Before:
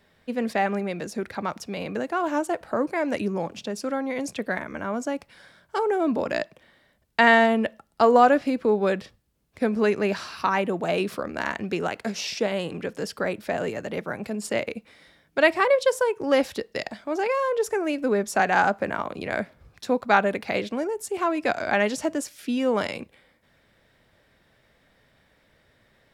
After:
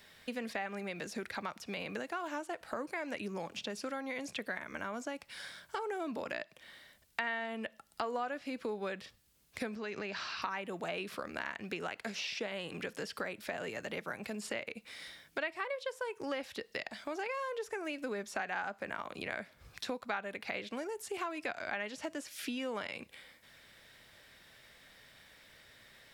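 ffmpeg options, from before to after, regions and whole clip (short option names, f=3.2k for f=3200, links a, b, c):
-filter_complex "[0:a]asettb=1/sr,asplit=3[a][b][c];[a]atrim=end=9.754[d];[b]atrim=start=9.75:end=10.42,asetpts=PTS-STARTPTS,afade=t=in:d=0.004:c=qsin,afade=t=out:st=0.666:d=0.004:c=qsin,lowpass=f=6.3k:w=0.5412,lowpass=f=6.3k:w=1.3066,acompressor=threshold=-27dB:ratio=5:attack=3.2:release=140:knee=1:detection=peak[e];[c]atrim=start=10.416[f];[d][e]acrossfade=d=0.004:c1=hsin:c2=qsin[g];[g][f]acrossfade=d=0.004:c1=qsin:c2=hsin,acrossover=split=3400[h][i];[i]acompressor=threshold=-51dB:ratio=4:attack=1:release=60[j];[h][j]amix=inputs=2:normalize=0,tiltshelf=f=1.4k:g=-7,acompressor=threshold=-41dB:ratio=4,volume=3dB"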